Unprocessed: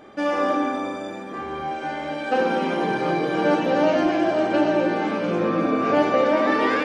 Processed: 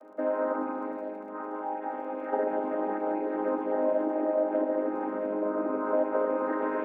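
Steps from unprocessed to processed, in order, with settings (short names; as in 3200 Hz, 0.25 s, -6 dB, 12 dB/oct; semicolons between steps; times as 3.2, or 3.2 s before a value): chord vocoder major triad, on G#3; compressor 2:1, threshold -24 dBFS, peak gain reduction 6 dB; Butterworth band-pass 740 Hz, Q 0.69; crackle 33/s -56 dBFS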